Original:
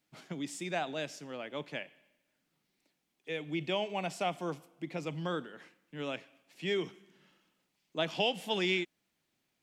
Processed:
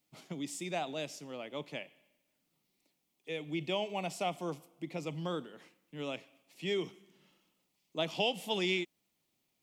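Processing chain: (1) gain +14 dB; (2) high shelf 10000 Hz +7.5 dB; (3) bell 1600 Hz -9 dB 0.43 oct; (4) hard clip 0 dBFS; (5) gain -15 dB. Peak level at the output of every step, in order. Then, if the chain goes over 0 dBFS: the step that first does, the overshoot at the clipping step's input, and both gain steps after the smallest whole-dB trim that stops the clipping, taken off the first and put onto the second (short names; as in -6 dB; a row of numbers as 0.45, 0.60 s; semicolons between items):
-2.5, -2.5, -2.5, -2.5, -17.5 dBFS; no overload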